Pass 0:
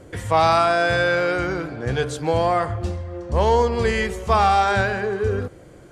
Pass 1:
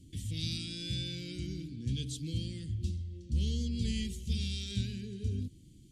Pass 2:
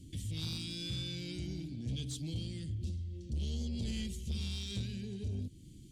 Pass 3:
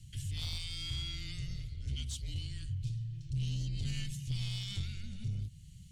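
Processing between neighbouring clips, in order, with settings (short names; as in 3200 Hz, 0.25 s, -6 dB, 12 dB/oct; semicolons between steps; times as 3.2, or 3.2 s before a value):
elliptic band-stop 260–3200 Hz, stop band 70 dB; gain -7 dB
in parallel at +1.5 dB: compressor, threshold -44 dBFS, peak gain reduction 17 dB; on the sum: soft clip -27 dBFS, distortion -15 dB; gain -3.5 dB
frequency shift -200 Hz; gain +1 dB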